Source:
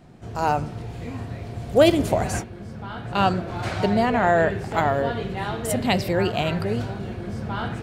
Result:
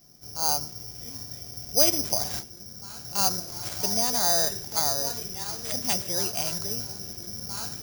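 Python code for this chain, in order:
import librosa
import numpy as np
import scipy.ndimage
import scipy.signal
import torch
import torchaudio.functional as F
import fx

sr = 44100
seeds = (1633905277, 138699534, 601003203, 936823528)

y = fx.dynamic_eq(x, sr, hz=940.0, q=1.4, threshold_db=-31.0, ratio=4.0, max_db=5)
y = (np.kron(y[::8], np.eye(8)[0]) * 8)[:len(y)]
y = fx.peak_eq(y, sr, hz=13000.0, db=-14.5, octaves=0.37)
y = F.gain(torch.from_numpy(y), -14.0).numpy()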